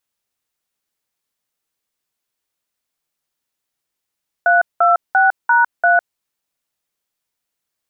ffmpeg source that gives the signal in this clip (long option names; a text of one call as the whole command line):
ffmpeg -f lavfi -i "aevalsrc='0.251*clip(min(mod(t,0.344),0.155-mod(t,0.344))/0.002,0,1)*(eq(floor(t/0.344),0)*(sin(2*PI*697*mod(t,0.344))+sin(2*PI*1477*mod(t,0.344)))+eq(floor(t/0.344),1)*(sin(2*PI*697*mod(t,0.344))+sin(2*PI*1336*mod(t,0.344)))+eq(floor(t/0.344),2)*(sin(2*PI*770*mod(t,0.344))+sin(2*PI*1477*mod(t,0.344)))+eq(floor(t/0.344),3)*(sin(2*PI*941*mod(t,0.344))+sin(2*PI*1477*mod(t,0.344)))+eq(floor(t/0.344),4)*(sin(2*PI*697*mod(t,0.344))+sin(2*PI*1477*mod(t,0.344))))':duration=1.72:sample_rate=44100" out.wav